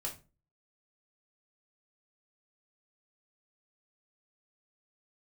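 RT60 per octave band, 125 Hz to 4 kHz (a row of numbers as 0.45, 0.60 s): 0.50, 0.45, 0.35, 0.30, 0.25, 0.25 s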